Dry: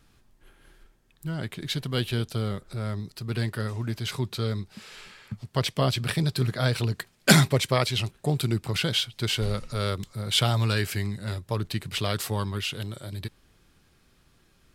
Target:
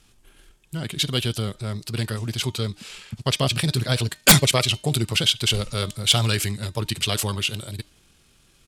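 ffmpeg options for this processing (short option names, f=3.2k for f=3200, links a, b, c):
-af "aexciter=amount=2.8:drive=1.9:freq=2.5k,lowpass=10k,bandreject=f=305.4:t=h:w=4,bandreject=f=610.8:t=h:w=4,bandreject=f=916.2:t=h:w=4,bandreject=f=1.2216k:t=h:w=4,bandreject=f=1.527k:t=h:w=4,bandreject=f=1.8324k:t=h:w=4,bandreject=f=2.1378k:t=h:w=4,bandreject=f=2.4432k:t=h:w=4,bandreject=f=2.7486k:t=h:w=4,bandreject=f=3.054k:t=h:w=4,bandreject=f=3.3594k:t=h:w=4,bandreject=f=3.6648k:t=h:w=4,bandreject=f=3.9702k:t=h:w=4,bandreject=f=4.2756k:t=h:w=4,bandreject=f=4.581k:t=h:w=4,bandreject=f=4.8864k:t=h:w=4,bandreject=f=5.1918k:t=h:w=4,bandreject=f=5.4972k:t=h:w=4,bandreject=f=5.8026k:t=h:w=4,bandreject=f=6.108k:t=h:w=4,bandreject=f=6.4134k:t=h:w=4,bandreject=f=6.7188k:t=h:w=4,bandreject=f=7.0242k:t=h:w=4,aeval=exprs='(mod(1.58*val(0)+1,2)-1)/1.58':c=same,atempo=1.7,volume=2.5dB"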